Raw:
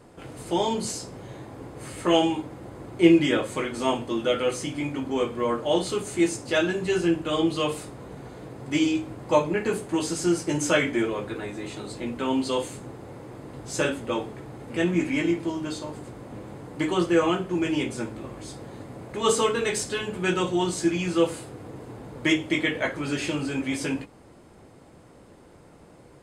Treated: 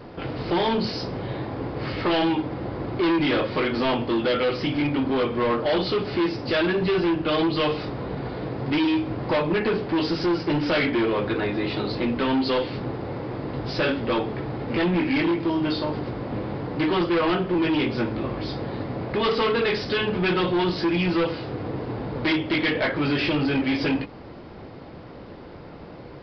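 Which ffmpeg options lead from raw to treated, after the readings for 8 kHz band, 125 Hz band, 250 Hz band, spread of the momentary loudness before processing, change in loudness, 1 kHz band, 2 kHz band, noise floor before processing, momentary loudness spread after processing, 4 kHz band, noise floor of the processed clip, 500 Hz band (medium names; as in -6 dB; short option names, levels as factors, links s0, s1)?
under -20 dB, +5.0 dB, +2.0 dB, 18 LU, +1.5 dB, +3.0 dB, +3.0 dB, -51 dBFS, 9 LU, +3.0 dB, -41 dBFS, +2.0 dB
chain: -filter_complex "[0:a]asplit=2[s0][s1];[s1]acompressor=threshold=0.0282:ratio=6,volume=1.41[s2];[s0][s2]amix=inputs=2:normalize=0,volume=11.9,asoftclip=hard,volume=0.0841,aresample=11025,aresample=44100,volume=1.33"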